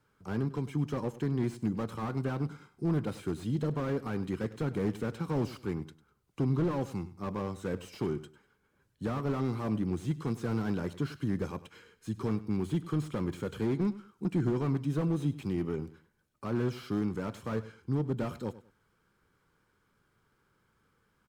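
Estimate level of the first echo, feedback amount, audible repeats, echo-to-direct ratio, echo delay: −16.5 dB, 25%, 2, −16.0 dB, 99 ms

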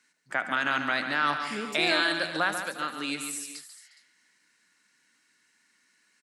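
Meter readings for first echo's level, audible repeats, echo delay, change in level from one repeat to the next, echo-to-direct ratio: −14.5 dB, 5, 75 ms, repeats not evenly spaced, −6.0 dB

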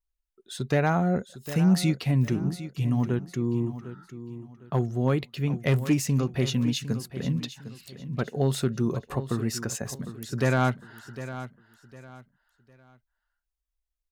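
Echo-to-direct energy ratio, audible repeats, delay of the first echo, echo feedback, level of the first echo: −12.5 dB, 3, 755 ms, 30%, −13.0 dB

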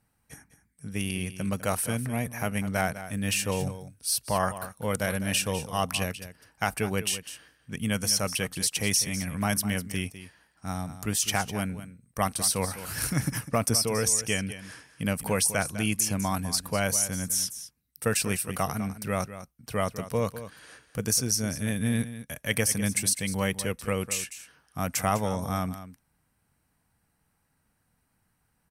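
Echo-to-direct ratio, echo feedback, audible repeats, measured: −13.0 dB, repeats not evenly spaced, 1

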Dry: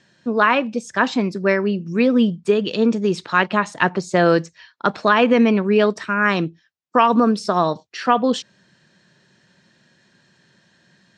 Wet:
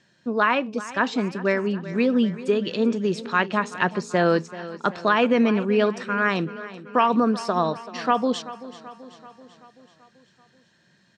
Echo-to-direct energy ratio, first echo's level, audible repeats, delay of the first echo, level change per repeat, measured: −14.0 dB, −16.0 dB, 5, 384 ms, −4.5 dB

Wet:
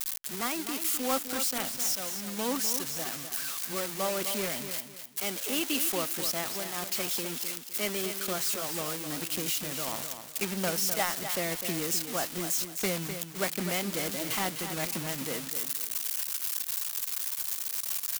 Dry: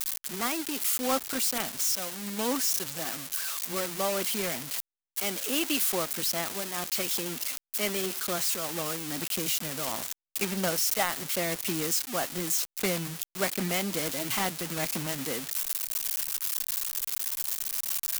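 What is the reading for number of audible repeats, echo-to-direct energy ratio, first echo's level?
3, −8.5 dB, −9.0 dB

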